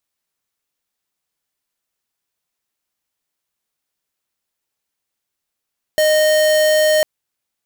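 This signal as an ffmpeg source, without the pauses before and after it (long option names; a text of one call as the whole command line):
ffmpeg -f lavfi -i "aevalsrc='0.211*(2*lt(mod(617*t,1),0.5)-1)':duration=1.05:sample_rate=44100" out.wav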